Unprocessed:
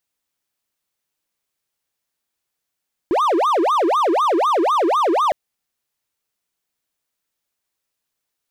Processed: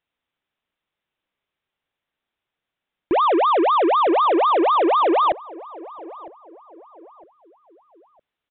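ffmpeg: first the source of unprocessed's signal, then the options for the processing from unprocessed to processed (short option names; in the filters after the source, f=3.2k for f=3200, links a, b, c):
-f lavfi -i "aevalsrc='0.251*(1-4*abs(mod((781*t-459/(2*PI*4)*sin(2*PI*4*t))+0.25,1)-0.5))':d=2.21:s=44100"
-filter_complex "[0:a]asplit=2[a][b];[b]aeval=exprs='(mod(13.3*val(0)+1,2)-1)/13.3':c=same,volume=-11dB[c];[a][c]amix=inputs=2:normalize=0,asplit=2[d][e];[e]adelay=958,lowpass=f=1.1k:p=1,volume=-18.5dB,asplit=2[f][g];[g]adelay=958,lowpass=f=1.1k:p=1,volume=0.42,asplit=2[h][i];[i]adelay=958,lowpass=f=1.1k:p=1,volume=0.42[j];[d][f][h][j]amix=inputs=4:normalize=0,aresample=8000,aresample=44100"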